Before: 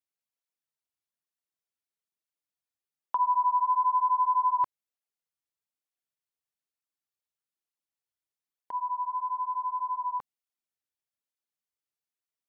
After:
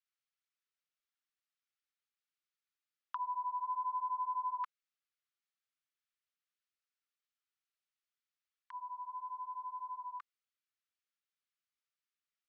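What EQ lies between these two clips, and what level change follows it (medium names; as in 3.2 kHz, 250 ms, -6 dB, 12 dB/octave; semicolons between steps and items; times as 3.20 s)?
elliptic high-pass 1.2 kHz, stop band 40 dB; distance through air 110 m; +3.0 dB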